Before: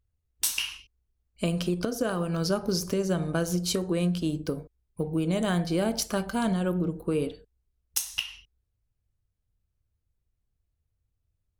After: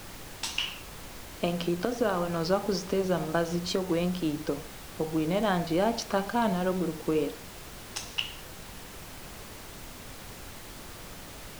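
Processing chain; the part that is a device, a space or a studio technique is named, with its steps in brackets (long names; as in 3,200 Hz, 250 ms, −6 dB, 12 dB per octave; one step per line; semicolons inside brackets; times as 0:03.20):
horn gramophone (band-pass filter 200–4,500 Hz; parametric band 850 Hz +6.5 dB; tape wow and flutter; pink noise bed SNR 12 dB)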